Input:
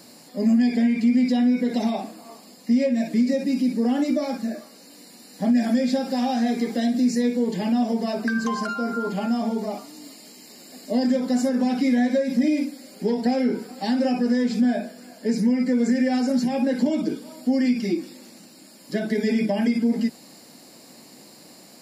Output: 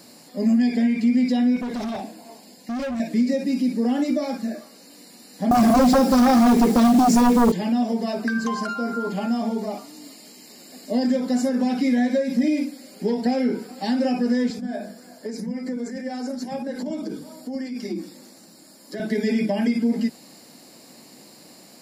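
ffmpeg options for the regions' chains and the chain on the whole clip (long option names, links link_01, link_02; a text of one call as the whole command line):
ffmpeg -i in.wav -filter_complex "[0:a]asettb=1/sr,asplit=3[link_01][link_02][link_03];[link_01]atrim=end=1.564[link_04];[link_02]atrim=start=1.56:end=3,asetpts=PTS-STARTPTS,afade=type=in:duration=0.004:curve=qsin,afade=type=out:start_time=1.436:duration=0.004:curve=qsin,asuperstop=centerf=1200:order=4:qfactor=4.7,asoftclip=type=hard:threshold=-25.5dB[link_05];[link_03]atrim=start=2.996[link_06];[link_04][link_05]acrossfade=duration=0.004:curve1=hsin:curve2=qsin[link_07];[link_07][link_06]acrossfade=duration=0.004:curve1=qsin:curve2=hsin,asettb=1/sr,asplit=3[link_08][link_09][link_10];[link_08]atrim=end=5.514[link_11];[link_09]atrim=start=5.51:end=7.52,asetpts=PTS-STARTPTS,afade=type=in:duration=0.004:curve=qsin,afade=type=out:start_time=2.006:duration=0.004:curve=qsin,equalizer=frequency=2600:width=0.61:gain=-10.5,aeval=exprs='0.251*sin(PI/2*2.82*val(0)/0.251)':channel_layout=same,acrusher=bits=5:mode=log:mix=0:aa=0.000001[link_12];[link_10]atrim=start=7.516[link_13];[link_11][link_12]acrossfade=duration=0.004:curve1=hsin:curve2=qsin[link_14];[link_14][link_13]acrossfade=duration=0.004:curve1=qsin:curve2=hsin,asettb=1/sr,asplit=3[link_15][link_16][link_17];[link_15]atrim=end=14.504[link_18];[link_16]atrim=start=14.5:end=19,asetpts=PTS-STARTPTS,afade=type=in:duration=0.004:curve=qsin,afade=type=out:start_time=4.496:duration=0.004:curve=qsin,acompressor=threshold=-23dB:ratio=10:attack=3.2:release=140:knee=1:detection=peak,equalizer=frequency=2700:width_type=o:width=0.68:gain=-7,acrossover=split=220[link_19][link_20];[link_19]adelay=80[link_21];[link_21][link_20]amix=inputs=2:normalize=0,atrim=end_sample=198450[link_22];[link_17]atrim=start=18.996[link_23];[link_18][link_22]acrossfade=duration=0.004:curve1=hsin:curve2=qsin[link_24];[link_24][link_23]acrossfade=duration=0.004:curve1=qsin:curve2=hsin" out.wav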